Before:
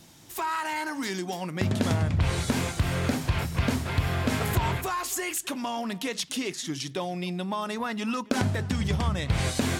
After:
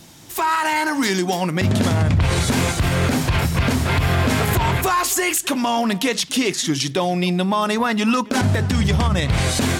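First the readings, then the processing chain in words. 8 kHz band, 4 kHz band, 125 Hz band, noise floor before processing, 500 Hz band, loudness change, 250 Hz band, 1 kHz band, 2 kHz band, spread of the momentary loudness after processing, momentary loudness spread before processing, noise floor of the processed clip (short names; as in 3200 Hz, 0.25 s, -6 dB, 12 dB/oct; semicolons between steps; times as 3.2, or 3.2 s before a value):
+10.0 dB, +10.0 dB, +8.5 dB, -44 dBFS, +9.5 dB, +9.5 dB, +9.5 dB, +10.0 dB, +10.0 dB, 2 LU, 6 LU, -33 dBFS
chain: AGC gain up to 4 dB; limiter -17.5 dBFS, peak gain reduction 10.5 dB; gain +8 dB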